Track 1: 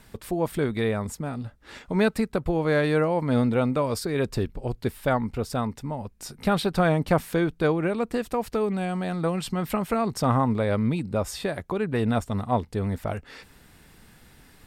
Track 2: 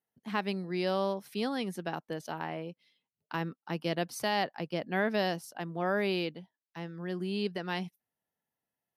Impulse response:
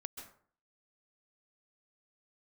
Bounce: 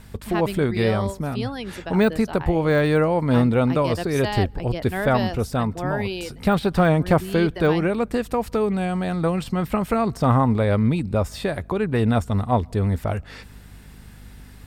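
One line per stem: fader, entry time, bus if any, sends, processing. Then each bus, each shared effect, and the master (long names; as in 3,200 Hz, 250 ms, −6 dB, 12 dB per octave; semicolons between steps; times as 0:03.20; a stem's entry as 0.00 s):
+3.0 dB, 0.00 s, send −22.5 dB, de-essing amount 85%; parametric band 70 Hz +8 dB 1.1 octaves; mains hum 50 Hz, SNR 23 dB
+3.0 dB, 0.00 s, send −23.5 dB, reverb reduction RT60 0.63 s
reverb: on, RT60 0.50 s, pre-delay 123 ms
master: no processing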